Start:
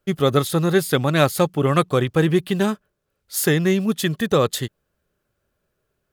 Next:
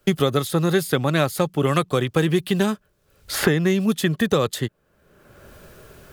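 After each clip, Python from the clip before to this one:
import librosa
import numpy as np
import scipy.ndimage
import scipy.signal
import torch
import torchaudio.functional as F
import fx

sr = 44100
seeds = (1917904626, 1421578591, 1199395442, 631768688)

y = fx.band_squash(x, sr, depth_pct=100)
y = y * librosa.db_to_amplitude(-2.0)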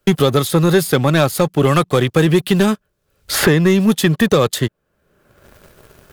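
y = fx.leveller(x, sr, passes=2)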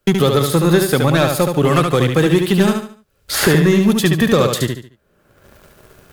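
y = fx.echo_feedback(x, sr, ms=72, feedback_pct=34, wet_db=-5.0)
y = y * librosa.db_to_amplitude(-1.0)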